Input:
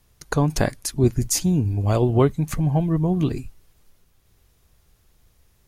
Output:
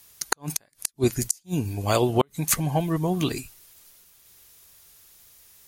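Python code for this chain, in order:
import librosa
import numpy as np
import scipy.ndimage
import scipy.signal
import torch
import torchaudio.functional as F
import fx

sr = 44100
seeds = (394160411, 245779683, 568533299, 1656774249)

y = fx.tilt_eq(x, sr, slope=3.5)
y = fx.gate_flip(y, sr, shuts_db=-9.0, range_db=-41)
y = F.gain(torch.from_numpy(y), 3.5).numpy()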